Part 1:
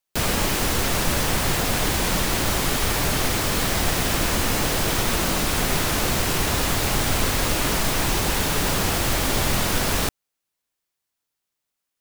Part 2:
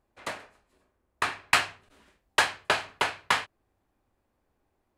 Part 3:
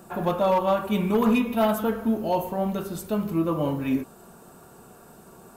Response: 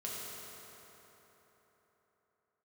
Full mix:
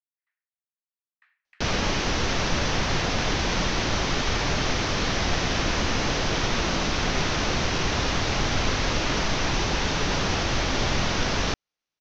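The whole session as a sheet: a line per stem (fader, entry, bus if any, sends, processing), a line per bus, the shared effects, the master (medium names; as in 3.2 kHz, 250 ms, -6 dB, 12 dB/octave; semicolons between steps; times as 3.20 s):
-1.0 dB, 1.45 s, no bus, no send, elliptic low-pass 6.1 kHz, stop band 40 dB
-18.5 dB, 0.00 s, bus A, no send, ladder band-pass 1.9 kHz, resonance 75%; peaking EQ 1.7 kHz -8 dB 0.21 oct; sawtooth tremolo in dB swelling 0.57 Hz, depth 27 dB
mute
bus A: 0.0 dB, compression 6:1, threshold -56 dBFS, peak gain reduction 10 dB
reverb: none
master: none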